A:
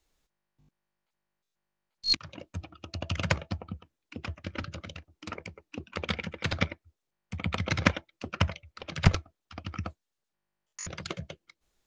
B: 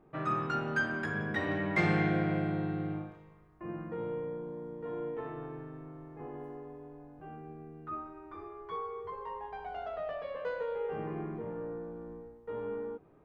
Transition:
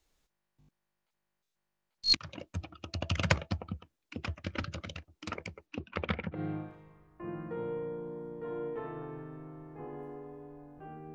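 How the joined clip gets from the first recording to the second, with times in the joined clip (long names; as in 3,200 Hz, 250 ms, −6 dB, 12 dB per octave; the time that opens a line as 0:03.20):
A
0:05.66–0:06.41: low-pass filter 5,600 Hz → 1,100 Hz
0:06.36: continue with B from 0:02.77, crossfade 0.10 s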